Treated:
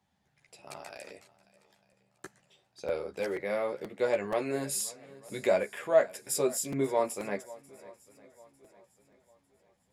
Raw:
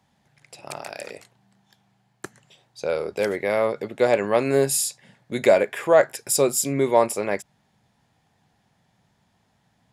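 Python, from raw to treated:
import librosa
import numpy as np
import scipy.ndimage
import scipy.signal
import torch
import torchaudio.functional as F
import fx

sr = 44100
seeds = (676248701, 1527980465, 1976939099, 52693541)

y = fx.echo_swing(x, sr, ms=900, ratio=1.5, feedback_pct=36, wet_db=-21)
y = fx.chorus_voices(y, sr, voices=6, hz=0.66, base_ms=13, depth_ms=2.8, mix_pct=40)
y = fx.buffer_crackle(y, sr, first_s=0.48, period_s=0.48, block=256, kind='repeat')
y = y * librosa.db_to_amplitude(-7.0)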